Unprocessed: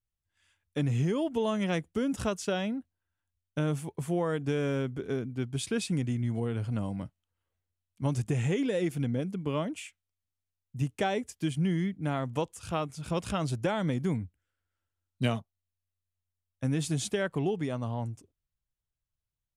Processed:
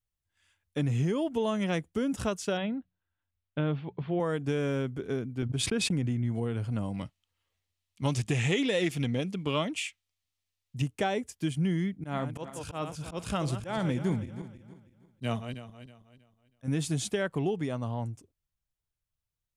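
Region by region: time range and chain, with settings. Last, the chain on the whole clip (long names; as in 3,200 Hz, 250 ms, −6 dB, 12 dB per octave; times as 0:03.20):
0:02.57–0:04.20: Butterworth low-pass 4,000 Hz 48 dB per octave + mains-hum notches 60/120/180 Hz
0:05.42–0:06.32: noise gate −39 dBFS, range −22 dB + high-shelf EQ 4,000 Hz −8.5 dB + background raised ahead of every attack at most 23 dB per second
0:06.94–0:10.82: parametric band 3,500 Hz +10.5 dB 2.7 octaves + notch filter 1,500 Hz, Q 7.6 + highs frequency-modulated by the lows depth 0.12 ms
0:11.86–0:16.68: feedback delay that plays each chunk backwards 160 ms, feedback 55%, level −11 dB + volume swells 115 ms
whole clip: no processing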